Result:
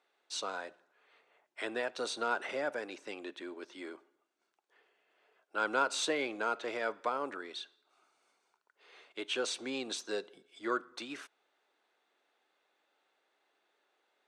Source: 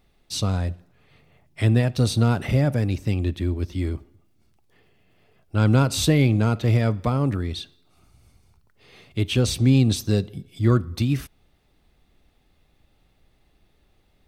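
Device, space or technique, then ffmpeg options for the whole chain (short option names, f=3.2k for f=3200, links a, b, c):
phone speaker on a table: -af "highpass=f=390:w=0.5412,highpass=f=390:w=1.3066,equalizer=f=970:t=q:w=4:g=5,equalizer=f=1.5k:t=q:w=4:g=9,equalizer=f=5k:t=q:w=4:g=-4,lowpass=f=8.2k:w=0.5412,lowpass=f=8.2k:w=1.3066,volume=-8dB"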